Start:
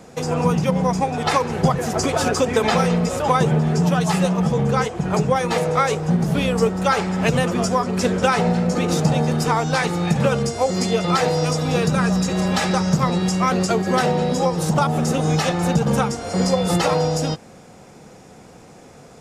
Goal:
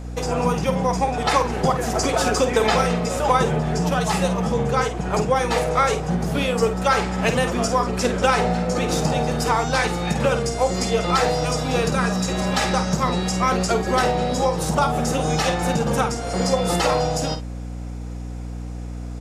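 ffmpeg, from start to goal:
-filter_complex "[0:a]equalizer=f=120:t=o:w=1.6:g=-8,aeval=exprs='val(0)+0.0251*(sin(2*PI*60*n/s)+sin(2*PI*2*60*n/s)/2+sin(2*PI*3*60*n/s)/3+sin(2*PI*4*60*n/s)/4+sin(2*PI*5*60*n/s)/5)':c=same,asplit=2[s0][s1];[s1]adelay=50,volume=0.355[s2];[s0][s2]amix=inputs=2:normalize=0"

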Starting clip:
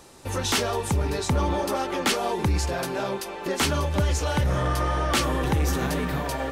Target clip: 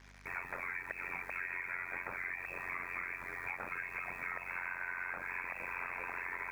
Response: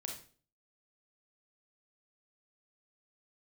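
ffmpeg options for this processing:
-af "highpass=f=1100:p=1,afreqshift=-150,alimiter=limit=0.0891:level=0:latency=1:release=188,lowpass=f=2200:t=q:w=0.5098,lowpass=f=2200:t=q:w=0.6013,lowpass=f=2200:t=q:w=0.9,lowpass=f=2200:t=q:w=2.563,afreqshift=-2600,acrusher=bits=8:mix=0:aa=0.5,tremolo=f=89:d=0.947,aeval=exprs='val(0)+0.000891*(sin(2*PI*50*n/s)+sin(2*PI*2*50*n/s)/2+sin(2*PI*3*50*n/s)/3+sin(2*PI*4*50*n/s)/4+sin(2*PI*5*50*n/s)/5)':c=same,acompressor=threshold=0.0112:ratio=6,volume=1.33"

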